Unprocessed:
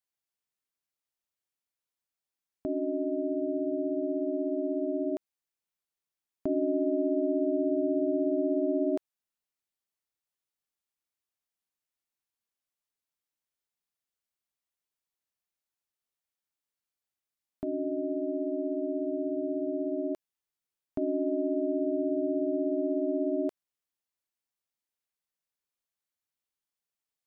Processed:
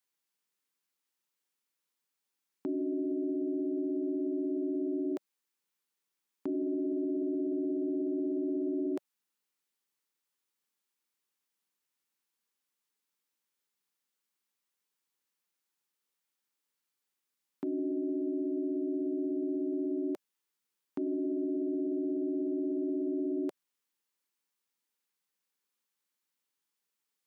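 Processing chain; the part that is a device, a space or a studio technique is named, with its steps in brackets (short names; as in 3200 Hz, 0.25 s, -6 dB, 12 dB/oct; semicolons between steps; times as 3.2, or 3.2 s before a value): PA system with an anti-feedback notch (HPF 160 Hz 24 dB/oct; Butterworth band-stop 660 Hz, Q 3.5; limiter -31.5 dBFS, peak gain reduction 10.5 dB); gain +5 dB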